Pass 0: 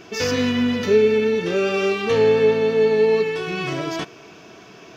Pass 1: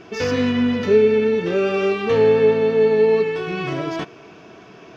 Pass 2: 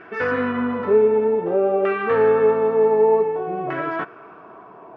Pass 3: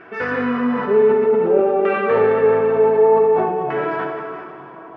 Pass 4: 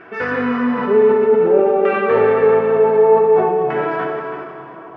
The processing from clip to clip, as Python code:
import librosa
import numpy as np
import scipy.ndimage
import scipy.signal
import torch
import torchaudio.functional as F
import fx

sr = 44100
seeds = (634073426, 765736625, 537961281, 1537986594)

y1 = fx.lowpass(x, sr, hz=2300.0, slope=6)
y1 = y1 * librosa.db_to_amplitude(1.5)
y2 = fx.filter_lfo_lowpass(y1, sr, shape='saw_down', hz=0.54, low_hz=670.0, high_hz=1700.0, q=2.9)
y2 = fx.low_shelf(y2, sr, hz=240.0, db=-11.0)
y3 = fx.rev_plate(y2, sr, seeds[0], rt60_s=3.2, hf_ratio=0.9, predelay_ms=0, drr_db=2.5)
y3 = fx.sustainer(y3, sr, db_per_s=40.0)
y4 = y3 + 10.0 ** (-11.0 / 20.0) * np.pad(y3, (int(323 * sr / 1000.0), 0))[:len(y3)]
y4 = y4 * librosa.db_to_amplitude(1.5)